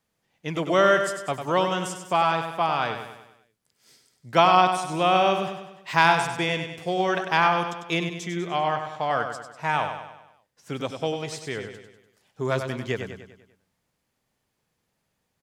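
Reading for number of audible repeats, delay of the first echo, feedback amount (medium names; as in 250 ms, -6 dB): 5, 98 ms, 50%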